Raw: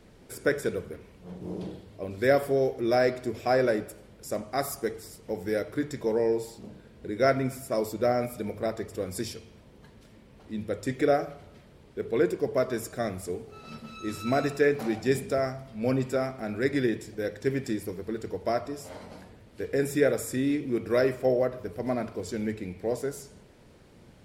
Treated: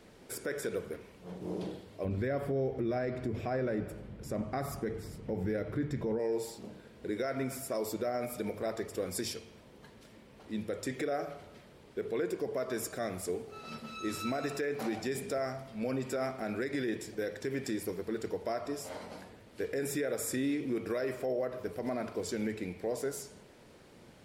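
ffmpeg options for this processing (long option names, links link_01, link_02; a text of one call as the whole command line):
ffmpeg -i in.wav -filter_complex "[0:a]asplit=3[link_01][link_02][link_03];[link_01]afade=type=out:start_time=2.04:duration=0.02[link_04];[link_02]bass=frequency=250:gain=15,treble=frequency=4000:gain=-11,afade=type=in:start_time=2.04:duration=0.02,afade=type=out:start_time=6.18:duration=0.02[link_05];[link_03]afade=type=in:start_time=6.18:duration=0.02[link_06];[link_04][link_05][link_06]amix=inputs=3:normalize=0,lowshelf=frequency=160:gain=-10,acompressor=threshold=-28dB:ratio=3,alimiter=level_in=2dB:limit=-24dB:level=0:latency=1:release=49,volume=-2dB,volume=1dB" out.wav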